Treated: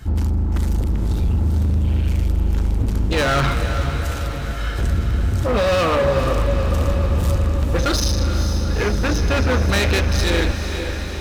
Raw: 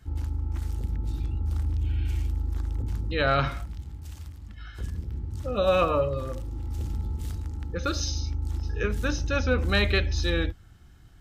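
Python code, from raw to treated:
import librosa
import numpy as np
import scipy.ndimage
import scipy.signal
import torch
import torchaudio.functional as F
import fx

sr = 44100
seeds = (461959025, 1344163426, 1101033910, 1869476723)

p1 = fx.lowpass(x, sr, hz=3700.0, slope=6, at=(8.0, 9.5))
p2 = fx.over_compress(p1, sr, threshold_db=-29.0, ratio=-1.0)
p3 = p1 + (p2 * librosa.db_to_amplitude(-1.0))
p4 = np.clip(p3, -10.0 ** (-24.5 / 20.0), 10.0 ** (-24.5 / 20.0))
p5 = p4 + fx.echo_diffused(p4, sr, ms=464, feedback_pct=69, wet_db=-8, dry=0)
y = p5 * librosa.db_to_amplitude(8.5)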